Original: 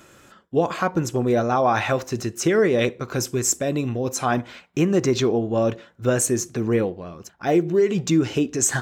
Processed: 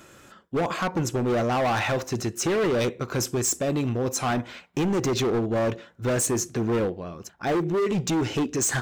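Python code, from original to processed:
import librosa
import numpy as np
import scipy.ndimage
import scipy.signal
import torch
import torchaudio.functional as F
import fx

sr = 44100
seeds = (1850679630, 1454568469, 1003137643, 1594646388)

y = np.clip(10.0 ** (21.0 / 20.0) * x, -1.0, 1.0) / 10.0 ** (21.0 / 20.0)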